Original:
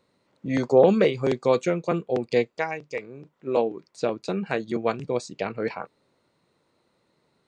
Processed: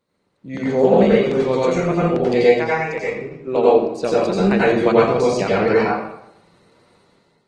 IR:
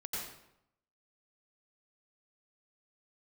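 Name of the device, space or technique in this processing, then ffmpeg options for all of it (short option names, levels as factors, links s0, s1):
speakerphone in a meeting room: -filter_complex "[0:a]asettb=1/sr,asplit=3[s0][s1][s2];[s0]atrim=end=4.944[s3];[s1]atrim=start=4.94:end=5.38,asetpts=PTS-STARTPTS,afade=t=in:d=0.004:c=qsin,afade=t=out:st=0.436:d=0.004:c=qsin,lowpass=6600[s4];[s2]atrim=start=5.376[s5];[s3][s4]acrossfade=d=0.004:c1=hsin:c2=qsin[s6];[s6][s5]acrossfade=d=0.004:c1=qsin:c2=hsin[s7];[1:a]atrim=start_sample=2205[s8];[s7][s8]afir=irnorm=-1:irlink=0,dynaudnorm=f=230:g=5:m=4.47" -ar 48000 -c:a libopus -b:a 20k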